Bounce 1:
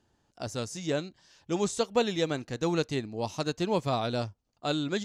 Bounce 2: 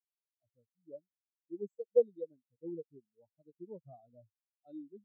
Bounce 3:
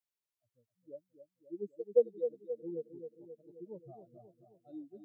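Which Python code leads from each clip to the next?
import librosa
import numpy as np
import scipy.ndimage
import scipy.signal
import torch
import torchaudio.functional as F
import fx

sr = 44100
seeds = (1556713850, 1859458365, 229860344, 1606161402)

y1 = fx.high_shelf(x, sr, hz=6200.0, db=9.5)
y1 = fx.spectral_expand(y1, sr, expansion=4.0)
y1 = y1 * 10.0 ** (-3.0 / 20.0)
y2 = fx.echo_feedback(y1, sr, ms=266, feedback_pct=59, wet_db=-9.5)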